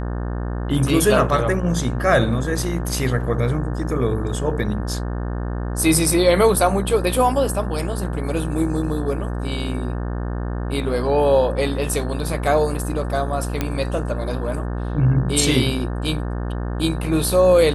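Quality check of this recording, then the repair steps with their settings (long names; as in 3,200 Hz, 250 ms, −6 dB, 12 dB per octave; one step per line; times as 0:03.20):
mains buzz 60 Hz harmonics 30 −25 dBFS
0:13.61: click −7 dBFS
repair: click removal
hum removal 60 Hz, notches 30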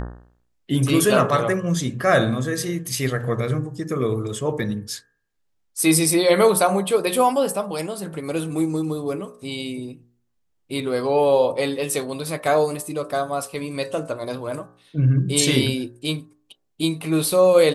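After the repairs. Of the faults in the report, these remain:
none of them is left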